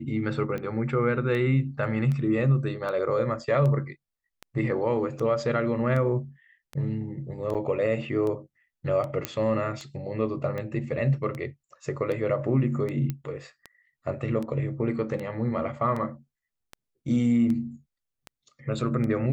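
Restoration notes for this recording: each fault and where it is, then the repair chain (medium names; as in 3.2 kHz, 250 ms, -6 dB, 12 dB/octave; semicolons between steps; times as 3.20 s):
tick 78 rpm -22 dBFS
7.54–7.55 s: dropout 7.9 ms
9.25 s: pop -11 dBFS
13.10 s: pop -17 dBFS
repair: de-click; interpolate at 7.54 s, 7.9 ms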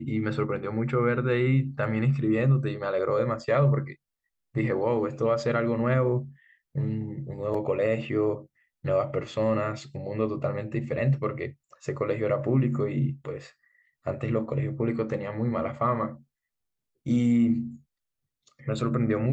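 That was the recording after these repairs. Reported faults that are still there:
nothing left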